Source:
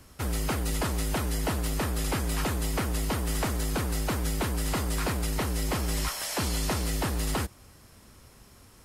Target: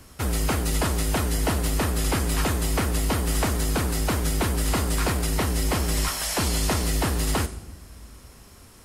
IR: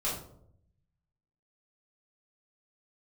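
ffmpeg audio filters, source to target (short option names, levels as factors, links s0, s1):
-filter_complex "[0:a]asplit=2[s0][s1];[1:a]atrim=start_sample=2205,asetrate=23373,aresample=44100,highshelf=f=4800:g=11[s2];[s1][s2]afir=irnorm=-1:irlink=0,volume=0.0631[s3];[s0][s3]amix=inputs=2:normalize=0,volume=1.58"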